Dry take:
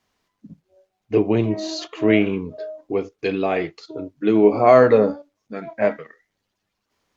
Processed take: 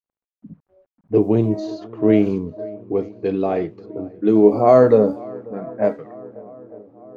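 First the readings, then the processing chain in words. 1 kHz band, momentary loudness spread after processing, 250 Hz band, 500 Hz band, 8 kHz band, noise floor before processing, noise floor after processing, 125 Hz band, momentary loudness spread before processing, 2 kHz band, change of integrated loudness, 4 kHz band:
−1.0 dB, 20 LU, +2.5 dB, +1.0 dB, can't be measured, −78 dBFS, below −85 dBFS, +3.0 dB, 21 LU, −9.5 dB, +1.5 dB, below −10 dB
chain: parametric band 2,400 Hz −14.5 dB 1.9 octaves
feedback echo with a long and a short gap by turns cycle 899 ms, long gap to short 1.5 to 1, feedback 59%, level −23 dB
bit reduction 11 bits
low-pass that shuts in the quiet parts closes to 970 Hz, open at −15 dBFS
level +3 dB

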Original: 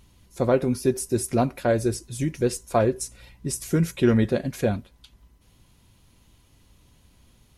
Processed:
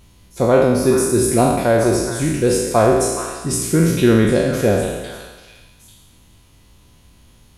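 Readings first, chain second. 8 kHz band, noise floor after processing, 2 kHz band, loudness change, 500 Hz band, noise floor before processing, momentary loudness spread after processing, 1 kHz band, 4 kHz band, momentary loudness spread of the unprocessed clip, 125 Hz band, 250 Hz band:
+10.5 dB, −50 dBFS, +10.0 dB, +8.5 dB, +9.0 dB, −59 dBFS, 8 LU, +9.5 dB, +10.0 dB, 10 LU, +6.5 dB, +7.5 dB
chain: peak hold with a decay on every bin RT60 1.23 s
echo through a band-pass that steps 421 ms, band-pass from 1,300 Hz, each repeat 1.4 octaves, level −7 dB
level +4.5 dB

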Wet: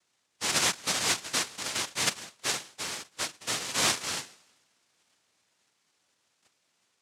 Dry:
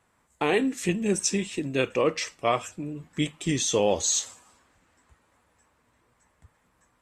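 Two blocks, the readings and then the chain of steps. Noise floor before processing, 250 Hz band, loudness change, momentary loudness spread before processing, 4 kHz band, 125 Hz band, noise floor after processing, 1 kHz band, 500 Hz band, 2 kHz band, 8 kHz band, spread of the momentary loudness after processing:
−69 dBFS, −15.0 dB, −2.5 dB, 8 LU, +4.0 dB, −12.5 dB, −75 dBFS, −4.0 dB, −15.0 dB, +1.0 dB, −1.0 dB, 10 LU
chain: harmonic and percussive parts rebalanced percussive −14 dB
cochlear-implant simulation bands 1
level −1.5 dB

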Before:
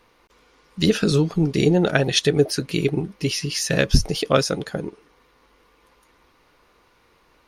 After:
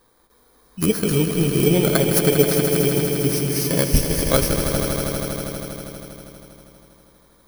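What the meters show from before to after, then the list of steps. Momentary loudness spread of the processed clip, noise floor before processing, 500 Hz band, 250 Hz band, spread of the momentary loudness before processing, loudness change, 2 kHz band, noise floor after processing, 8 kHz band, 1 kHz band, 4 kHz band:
13 LU, −60 dBFS, +2.0 dB, +1.5 dB, 7 LU, +1.5 dB, −1.5 dB, −57 dBFS, +5.5 dB, +0.5 dB, −2.0 dB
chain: samples in bit-reversed order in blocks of 16 samples
on a send: echo that builds up and dies away 80 ms, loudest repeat 5, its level −9.5 dB
on the sum: level −1 dB

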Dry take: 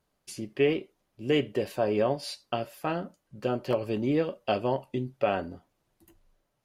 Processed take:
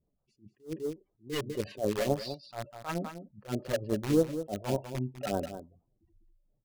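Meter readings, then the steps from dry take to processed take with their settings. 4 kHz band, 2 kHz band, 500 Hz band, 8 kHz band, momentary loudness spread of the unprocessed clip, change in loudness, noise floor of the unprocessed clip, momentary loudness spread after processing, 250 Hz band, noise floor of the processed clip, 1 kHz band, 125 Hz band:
−4.5 dB, −6.0 dB, −5.0 dB, +2.5 dB, 11 LU, −4.0 dB, −78 dBFS, 15 LU, −3.0 dB, −79 dBFS, −7.0 dB, −1.0 dB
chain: gate on every frequency bin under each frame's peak −15 dB strong
low-pass that shuts in the quiet parts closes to 690 Hz, open at −23 dBFS
in parallel at −9.5 dB: bit reduction 4 bits
on the sum: all-pass phaser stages 2, 3.4 Hz, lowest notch 240–2,300 Hz
on a send: single-tap delay 200 ms −11 dB
on the sum: level that may rise only so fast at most 260 dB per second

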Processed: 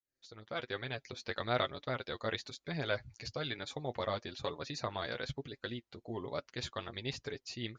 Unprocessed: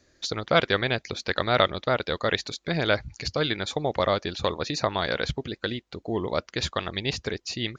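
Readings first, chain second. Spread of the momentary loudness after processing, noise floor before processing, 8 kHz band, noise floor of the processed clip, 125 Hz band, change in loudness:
7 LU, −67 dBFS, −13.0 dB, −85 dBFS, −11.0 dB, −12.5 dB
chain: fade in at the beginning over 1.19 s
flanger 1.1 Hz, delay 6.8 ms, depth 2.3 ms, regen +24%
level −8.5 dB

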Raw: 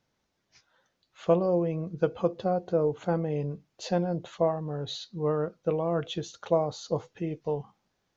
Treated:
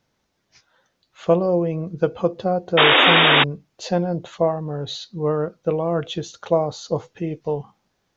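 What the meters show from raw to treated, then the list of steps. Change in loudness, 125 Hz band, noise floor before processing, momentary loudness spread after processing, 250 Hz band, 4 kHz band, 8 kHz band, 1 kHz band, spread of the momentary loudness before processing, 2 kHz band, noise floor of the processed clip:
+10.0 dB, +6.0 dB, −78 dBFS, 17 LU, +6.5 dB, +22.5 dB, can't be measured, +12.0 dB, 9 LU, +26.5 dB, −72 dBFS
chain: sound drawn into the spectrogram noise, 0:02.77–0:03.44, 240–3,800 Hz −20 dBFS
level +6 dB

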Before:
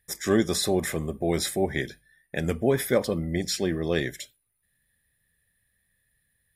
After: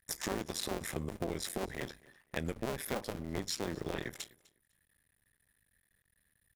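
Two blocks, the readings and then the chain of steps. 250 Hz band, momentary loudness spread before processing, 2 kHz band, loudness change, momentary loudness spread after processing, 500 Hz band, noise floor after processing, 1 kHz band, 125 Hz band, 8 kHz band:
−13.0 dB, 10 LU, −10.0 dB, −12.0 dB, 7 LU, −14.0 dB, −78 dBFS, −7.5 dB, −12.0 dB, −9.0 dB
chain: sub-harmonics by changed cycles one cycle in 2, muted
downward compressor 6 to 1, threshold −33 dBFS, peak gain reduction 14 dB
on a send: repeating echo 251 ms, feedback 19%, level −23 dB

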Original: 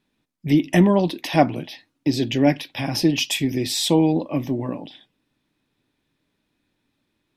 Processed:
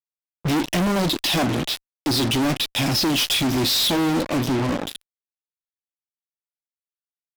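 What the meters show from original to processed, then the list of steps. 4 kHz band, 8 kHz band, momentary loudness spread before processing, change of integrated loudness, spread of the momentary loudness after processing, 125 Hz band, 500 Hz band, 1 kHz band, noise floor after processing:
+6.0 dB, +3.5 dB, 12 LU, −0.5 dB, 9 LU, −1.5 dB, −3.5 dB, −0.5 dB, below −85 dBFS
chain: octave-band graphic EQ 2,000/4,000/8,000 Hz −4/+10/−3 dB
fuzz pedal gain 37 dB, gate −34 dBFS
level −5.5 dB

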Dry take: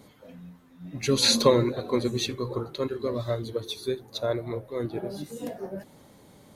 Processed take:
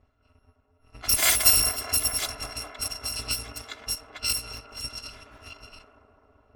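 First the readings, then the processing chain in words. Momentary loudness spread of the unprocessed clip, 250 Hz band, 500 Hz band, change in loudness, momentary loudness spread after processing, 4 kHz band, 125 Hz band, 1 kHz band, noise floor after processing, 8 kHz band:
18 LU, −17.5 dB, −16.5 dB, +3.5 dB, 19 LU, +1.0 dB, −9.5 dB, −3.0 dB, −67 dBFS, +9.5 dB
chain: samples in bit-reversed order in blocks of 256 samples
delay with a band-pass on its return 206 ms, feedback 79%, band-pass 680 Hz, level −3.5 dB
low-pass that shuts in the quiet parts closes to 880 Hz, open at −22.5 dBFS
level +2 dB

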